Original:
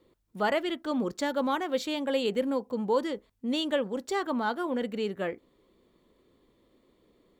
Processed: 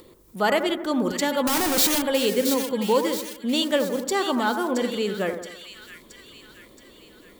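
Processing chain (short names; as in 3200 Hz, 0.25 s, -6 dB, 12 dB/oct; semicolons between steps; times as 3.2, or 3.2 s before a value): 1.47–2.02 infinite clipping; high shelf 6000 Hz +12 dB; upward compressor, threshold -47 dBFS; split-band echo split 1700 Hz, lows 84 ms, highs 0.673 s, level -8 dB; gain +5 dB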